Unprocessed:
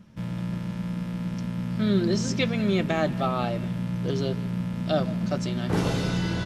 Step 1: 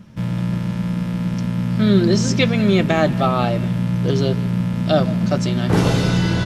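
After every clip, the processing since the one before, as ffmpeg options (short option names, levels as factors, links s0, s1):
-af "equalizer=f=120:t=o:w=0.45:g=3,volume=2.51"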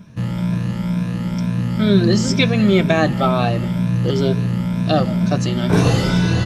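-af "afftfilt=real='re*pow(10,9/40*sin(2*PI*(1.6*log(max(b,1)*sr/1024/100)/log(2)-(2.1)*(pts-256)/sr)))':imag='im*pow(10,9/40*sin(2*PI*(1.6*log(max(b,1)*sr/1024/100)/log(2)-(2.1)*(pts-256)/sr)))':win_size=1024:overlap=0.75"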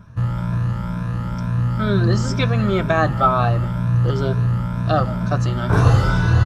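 -af "firequalizer=gain_entry='entry(100,0);entry(170,-15);entry(1300,-1);entry(2100,-15)':delay=0.05:min_phase=1,volume=2.37"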